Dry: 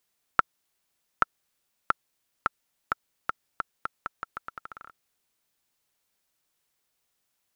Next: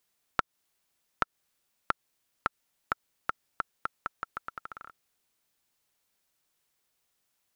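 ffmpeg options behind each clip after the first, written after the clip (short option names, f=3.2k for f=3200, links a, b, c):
-af "acompressor=threshold=-24dB:ratio=5"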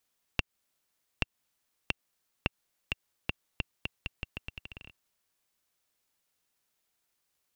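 -af "aeval=exprs='val(0)*sin(2*PI*1400*n/s)':c=same,volume=1dB"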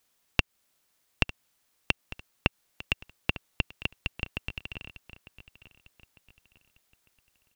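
-af "aecho=1:1:901|1802|2703:0.141|0.0551|0.0215,volume=6.5dB"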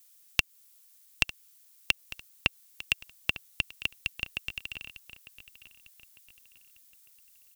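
-af "crystalizer=i=9:c=0,volume=-9.5dB"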